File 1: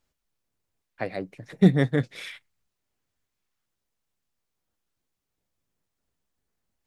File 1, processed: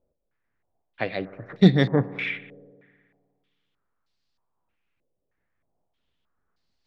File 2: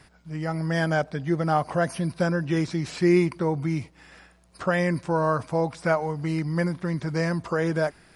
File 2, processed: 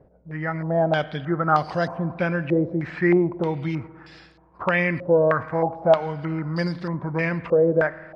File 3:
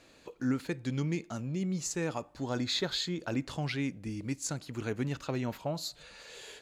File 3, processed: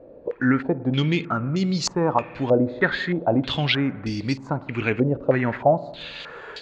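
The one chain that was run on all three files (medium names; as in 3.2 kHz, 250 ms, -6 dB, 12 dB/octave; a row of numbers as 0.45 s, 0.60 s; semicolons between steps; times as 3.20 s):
spring tank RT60 1.9 s, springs 52 ms, chirp 40 ms, DRR 15.5 dB; step-sequenced low-pass 3.2 Hz 540–4500 Hz; normalise loudness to -23 LUFS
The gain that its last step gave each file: +2.0 dB, -0.5 dB, +10.0 dB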